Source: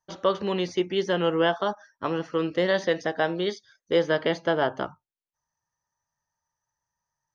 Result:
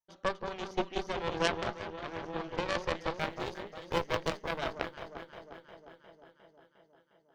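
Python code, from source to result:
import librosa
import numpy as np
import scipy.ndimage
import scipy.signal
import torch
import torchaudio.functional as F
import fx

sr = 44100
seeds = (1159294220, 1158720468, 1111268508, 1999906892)

y = fx.law_mismatch(x, sr, coded='A', at=(3.11, 4.58))
y = fx.echo_alternate(y, sr, ms=178, hz=1000.0, feedback_pct=81, wet_db=-4.0)
y = fx.cheby_harmonics(y, sr, harmonics=(3, 4, 5), levels_db=(-9, -17, -25), full_scale_db=-8.0)
y = y * 10.0 ** (-2.5 / 20.0)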